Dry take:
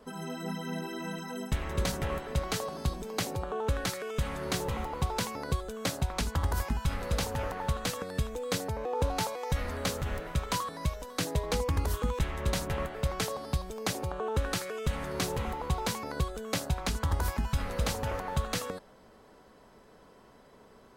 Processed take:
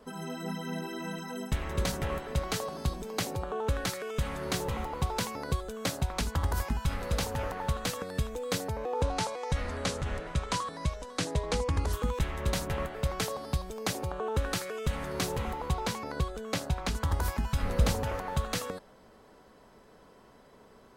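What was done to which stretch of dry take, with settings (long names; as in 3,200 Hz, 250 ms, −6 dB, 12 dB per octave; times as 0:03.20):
0:09.02–0:11.93: low-pass filter 9,700 Hz 24 dB per octave
0:15.73–0:16.95: high-shelf EQ 8,500 Hz −7.5 dB
0:17.63–0:18.03: low-shelf EQ 440 Hz +6.5 dB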